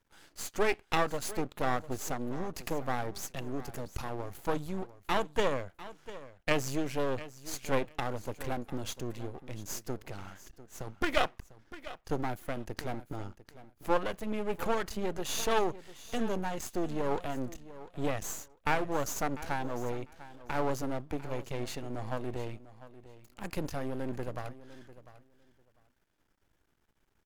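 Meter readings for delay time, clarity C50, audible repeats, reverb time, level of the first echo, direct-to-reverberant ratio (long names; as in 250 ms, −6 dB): 698 ms, no reverb audible, 2, no reverb audible, −16.0 dB, no reverb audible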